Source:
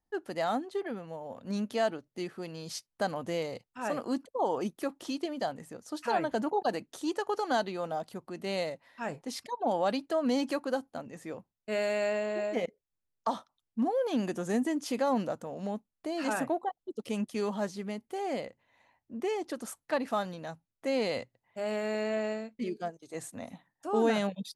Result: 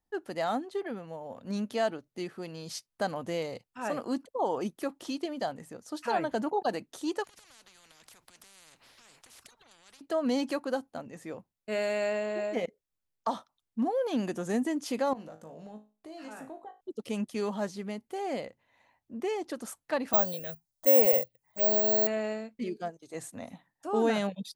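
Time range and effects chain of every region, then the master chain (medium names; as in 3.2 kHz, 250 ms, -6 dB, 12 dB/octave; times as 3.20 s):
7.24–10.01 s: treble shelf 9.8 kHz -6.5 dB + compression 4:1, threshold -43 dBFS + spectrum-flattening compressor 10:1
15.13–16.81 s: compression 3:1, threshold -37 dBFS + feedback comb 53 Hz, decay 0.32 s, mix 80%
20.13–22.07 s: FFT filter 210 Hz 0 dB, 320 Hz -4 dB, 510 Hz +9 dB, 1.3 kHz -3 dB, 4.3 kHz +10 dB + touch-sensitive phaser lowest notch 340 Hz, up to 4 kHz, full sweep at -22.5 dBFS + careless resampling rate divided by 2×, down filtered, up zero stuff
whole clip: none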